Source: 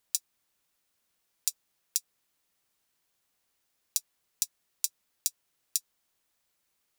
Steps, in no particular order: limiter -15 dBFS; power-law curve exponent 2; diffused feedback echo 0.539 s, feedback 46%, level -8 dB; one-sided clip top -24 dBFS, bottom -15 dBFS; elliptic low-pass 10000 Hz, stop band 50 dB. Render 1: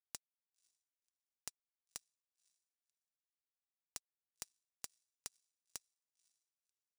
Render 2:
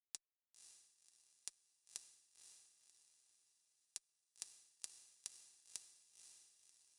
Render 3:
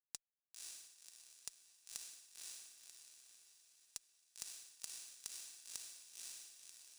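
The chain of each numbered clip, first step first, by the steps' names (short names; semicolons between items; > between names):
elliptic low-pass > limiter > diffused feedback echo > one-sided clip > power-law curve; limiter > power-law curve > elliptic low-pass > one-sided clip > diffused feedback echo; elliptic low-pass > power-law curve > diffused feedback echo > limiter > one-sided clip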